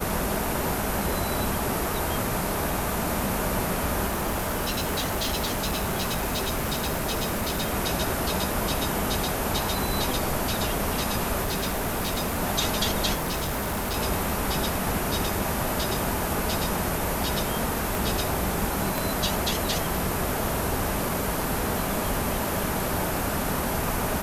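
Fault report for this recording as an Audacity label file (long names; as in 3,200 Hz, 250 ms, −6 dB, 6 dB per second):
4.070000	7.750000	clipping −23 dBFS
11.420000	12.410000	clipping −23 dBFS
13.140000	13.970000	clipping −24.5 dBFS
17.950000	17.950000	click
18.980000	18.980000	click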